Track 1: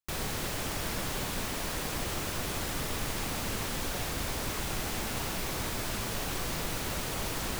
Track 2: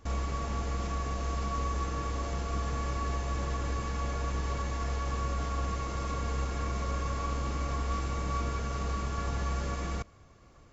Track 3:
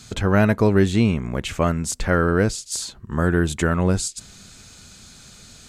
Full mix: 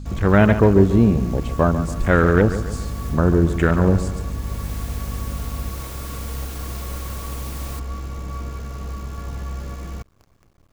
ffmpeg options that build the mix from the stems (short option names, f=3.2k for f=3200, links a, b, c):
-filter_complex "[0:a]crystalizer=i=1:c=0,adelay=200,volume=-6.5dB[a];[1:a]lowshelf=f=390:g=7,acrusher=bits=8:dc=4:mix=0:aa=0.000001,volume=-3.5dB[b];[2:a]afwtdn=0.0631,aeval=exprs='val(0)+0.0178*(sin(2*PI*50*n/s)+sin(2*PI*2*50*n/s)/2+sin(2*PI*3*50*n/s)/3+sin(2*PI*4*50*n/s)/4+sin(2*PI*5*50*n/s)/5)':c=same,volume=3dB,asplit=3[c][d][e];[d]volume=-11.5dB[f];[e]apad=whole_len=343712[g];[a][g]sidechaincompress=threshold=-30dB:ratio=8:attack=5.5:release=563[h];[f]aecho=0:1:140|280|420|560|700|840:1|0.43|0.185|0.0795|0.0342|0.0147[i];[h][b][c][i]amix=inputs=4:normalize=0"